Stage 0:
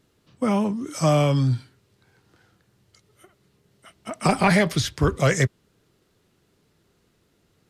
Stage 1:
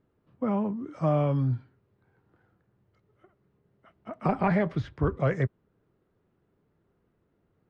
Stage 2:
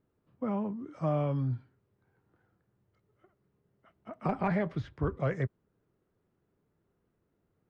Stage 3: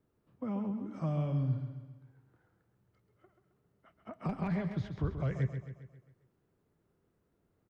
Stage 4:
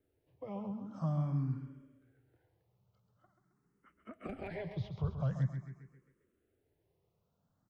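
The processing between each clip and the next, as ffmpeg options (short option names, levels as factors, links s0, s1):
-af "lowpass=1400,volume=0.531"
-af "asoftclip=type=hard:threshold=0.2,volume=0.562"
-filter_complex "[0:a]acrossover=split=220|3000[s0][s1][s2];[s1]acompressor=threshold=0.00631:ratio=2.5[s3];[s0][s3][s2]amix=inputs=3:normalize=0,asplit=2[s4][s5];[s5]aecho=0:1:134|268|402|536|670|804:0.376|0.188|0.094|0.047|0.0235|0.0117[s6];[s4][s6]amix=inputs=2:normalize=0"
-filter_complex "[0:a]asplit=2[s0][s1];[s1]afreqshift=0.46[s2];[s0][s2]amix=inputs=2:normalize=1"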